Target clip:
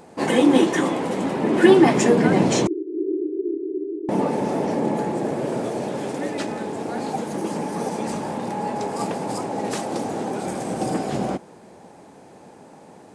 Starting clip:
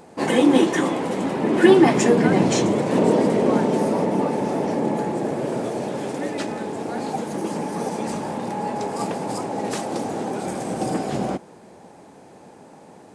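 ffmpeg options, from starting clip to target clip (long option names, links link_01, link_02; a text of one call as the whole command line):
ffmpeg -i in.wav -filter_complex "[0:a]asettb=1/sr,asplit=3[link_01][link_02][link_03];[link_01]atrim=end=2.674[link_04];[link_02]atrim=start=2.67:end=4.09,asetpts=PTS-STARTPTS,afade=type=in:duration=0.004:curve=qsin,afade=type=out:start_time=1.416:duration=0.004:curve=qsin,asuperpass=centerf=350:order=8:qfactor=3.5[link_05];[link_03]atrim=start=4.086[link_06];[link_04][link_05]acrossfade=duration=0.004:curve1=hsin:curve2=qsin[link_07];[link_07][link_06]acrossfade=duration=0.004:curve1=qsin:curve2=hsin" out.wav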